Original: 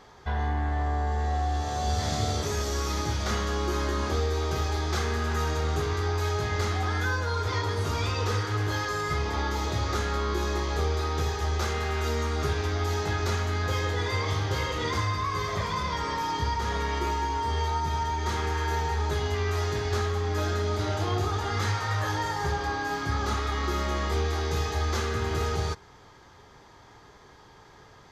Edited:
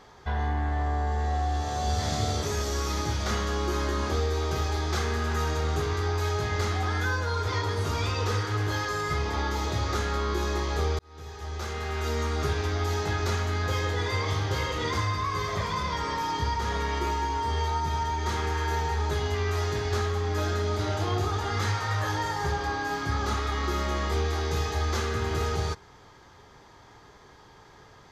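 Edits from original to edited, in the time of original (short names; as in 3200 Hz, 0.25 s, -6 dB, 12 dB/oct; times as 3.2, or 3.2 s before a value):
10.99–12.23 fade in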